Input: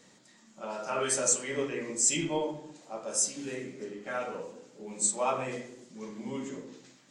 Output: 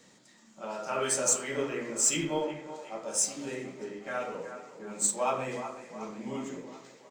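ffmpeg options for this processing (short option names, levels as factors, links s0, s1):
-filter_complex "[0:a]acrossover=split=430|2700[s0][s1][s2];[s1]aecho=1:1:367|734|1101|1468|1835|2202|2569:0.355|0.209|0.124|0.0729|0.043|0.0254|0.015[s3];[s2]acrusher=bits=5:mode=log:mix=0:aa=0.000001[s4];[s0][s3][s4]amix=inputs=3:normalize=0"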